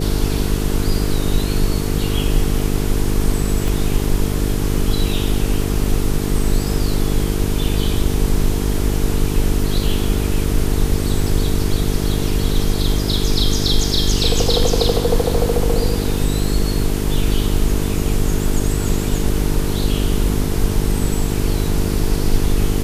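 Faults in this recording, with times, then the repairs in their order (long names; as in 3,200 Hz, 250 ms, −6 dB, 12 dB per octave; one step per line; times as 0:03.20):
mains buzz 50 Hz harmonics 9 −21 dBFS
0:03.68: click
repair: click removal
hum removal 50 Hz, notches 9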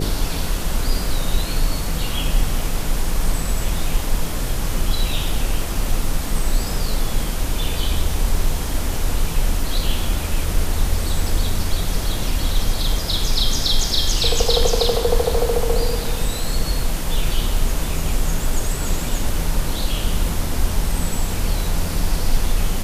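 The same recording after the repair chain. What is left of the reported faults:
0:03.68: click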